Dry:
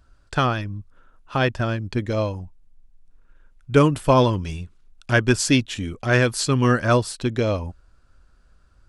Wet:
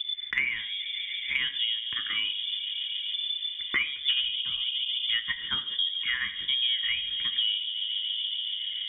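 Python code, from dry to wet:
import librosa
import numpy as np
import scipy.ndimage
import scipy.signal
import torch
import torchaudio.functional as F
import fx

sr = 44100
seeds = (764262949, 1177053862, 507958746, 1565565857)

p1 = fx.level_steps(x, sr, step_db=14)
p2 = x + (p1 * librosa.db_to_amplitude(1.0))
p3 = fx.harmonic_tremolo(p2, sr, hz=1.2, depth_pct=100, crossover_hz=870.0)
p4 = 10.0 ** (-8.5 / 20.0) * np.tanh(p3 / 10.0 ** (-8.5 / 20.0))
p5 = fx.fixed_phaser(p4, sr, hz=550.0, stages=8)
p6 = p5 + fx.echo_wet_lowpass(p5, sr, ms=142, feedback_pct=78, hz=610.0, wet_db=-9.5, dry=0)
p7 = fx.rev_gated(p6, sr, seeds[0], gate_ms=150, shape='falling', drr_db=7.5)
p8 = fx.freq_invert(p7, sr, carrier_hz=3500)
p9 = fx.band_squash(p8, sr, depth_pct=100)
y = p9 * librosa.db_to_amplitude(-3.5)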